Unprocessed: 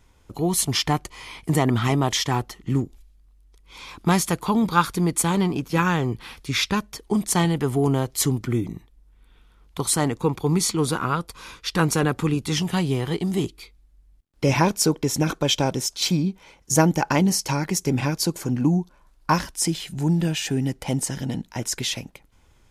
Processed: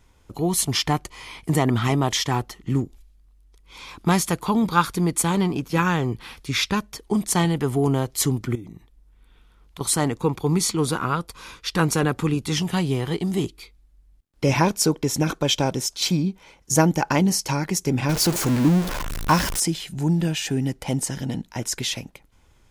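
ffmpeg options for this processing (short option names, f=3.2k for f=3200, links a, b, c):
-filter_complex "[0:a]asettb=1/sr,asplit=3[a][b][c];[a]atrim=end=8.554[d];[b]atrim=start=8.55:end=9.81,asetpts=PTS-STARTPTS,afade=t=in:d=0.004:c=qsin,afade=t=out:st=1.256:d=0.004:c=qsin,acompressor=threshold=-39dB:ratio=2.5:attack=3.2:release=140:knee=1:detection=peak[e];[c]atrim=start=9.806[f];[d][e]acrossfade=d=0.004:c1=hsin:c2=qsin[g];[g][f]acrossfade=d=0.004:c1=qsin:c2=hsin,asettb=1/sr,asplit=3[h][i][j];[h]atrim=end=18.094[k];[i]atrim=start=18.09:end=19.6,asetpts=PTS-STARTPTS,afade=t=in:d=0.004:c=qsin,afade=t=out:st=1.506:d=0.004:c=qsin,aeval=exprs='val(0)+0.5*0.0841*sgn(val(0))':c=same[l];[j]atrim=start=19.596[m];[k][l]acrossfade=d=0.004:c1=hsin:c2=qsin[n];[n][m]acrossfade=d=0.004:c1=qsin:c2=hsin"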